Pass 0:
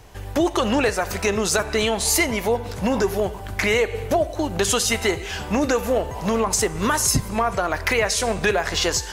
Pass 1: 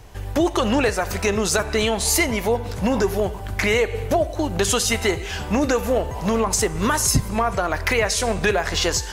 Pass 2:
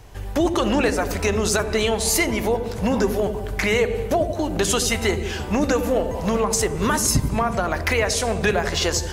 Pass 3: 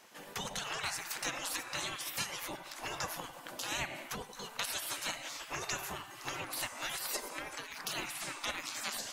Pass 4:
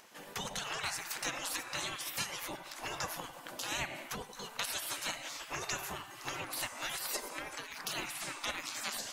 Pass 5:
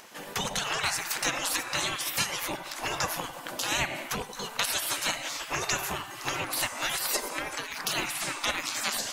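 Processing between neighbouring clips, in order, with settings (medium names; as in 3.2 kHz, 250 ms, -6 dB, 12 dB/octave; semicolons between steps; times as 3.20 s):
bass shelf 140 Hz +4.5 dB
feedback echo behind a low-pass 86 ms, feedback 65%, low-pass 450 Hz, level -5 dB; trim -1 dB
spectral gate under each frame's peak -20 dB weak; trim -5 dB
upward compressor, threshold -59 dBFS
rattle on loud lows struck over -47 dBFS, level -37 dBFS; trim +8.5 dB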